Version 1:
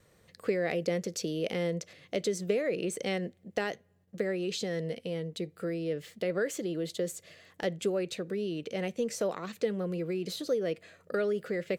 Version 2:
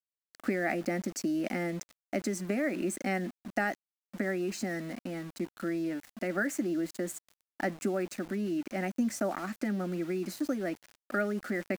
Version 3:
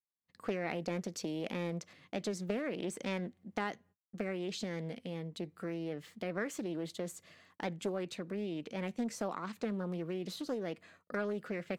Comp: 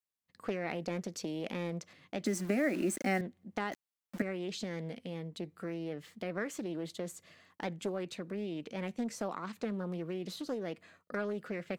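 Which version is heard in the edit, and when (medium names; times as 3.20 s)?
3
2.26–3.21 s: from 2
3.72–4.22 s: from 2
not used: 1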